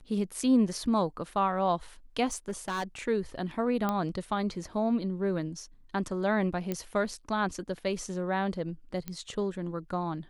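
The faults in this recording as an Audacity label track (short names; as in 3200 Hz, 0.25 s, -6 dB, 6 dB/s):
2.310000	2.840000	clipped -28 dBFS
3.890000	3.890000	pop -16 dBFS
6.720000	6.720000	pop -18 dBFS
9.080000	9.080000	pop -21 dBFS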